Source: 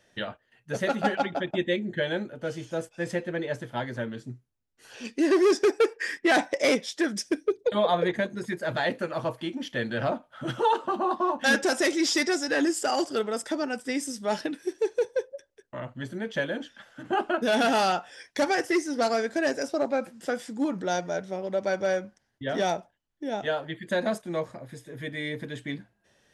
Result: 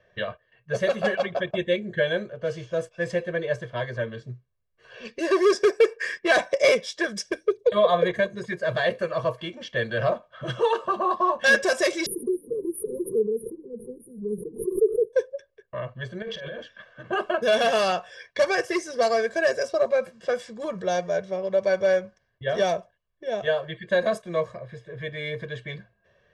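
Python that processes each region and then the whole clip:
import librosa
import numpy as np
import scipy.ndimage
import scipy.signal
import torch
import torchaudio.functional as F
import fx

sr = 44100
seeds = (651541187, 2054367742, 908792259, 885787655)

y = fx.chain(x, sr, fx.brickwall_bandstop(low_hz=510.0, high_hz=9400.0),
    fx.comb(ms=5.0, depth=0.52),
    fx.pre_swell(db_per_s=80.0), at=(12.06, 15.13))
y = fx.chain(y, sr, fx.high_shelf(hz=9400.0, db=-11.5),
    fx.over_compress(threshold_db=-38.0, ratio=-1.0),
    fx.doubler(ms=48.0, db=-11.0), at=(16.22, 16.62))
y = fx.high_shelf(y, sr, hz=8300.0, db=-8.0)
y = fx.env_lowpass(y, sr, base_hz=2500.0, full_db=-24.0)
y = y + 0.99 * np.pad(y, (int(1.8 * sr / 1000.0), 0))[:len(y)]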